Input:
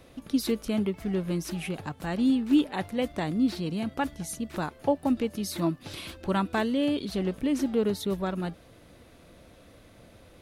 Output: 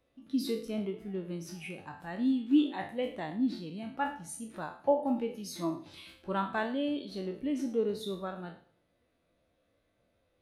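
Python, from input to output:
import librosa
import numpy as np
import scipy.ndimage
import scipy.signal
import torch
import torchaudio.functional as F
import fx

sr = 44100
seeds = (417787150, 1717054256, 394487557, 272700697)

p1 = fx.spec_trails(x, sr, decay_s=0.62)
p2 = fx.low_shelf(p1, sr, hz=460.0, db=-9.0)
p3 = p2 + fx.echo_feedback(p2, sr, ms=110, feedback_pct=47, wet_db=-17.5, dry=0)
y = fx.spectral_expand(p3, sr, expansion=1.5)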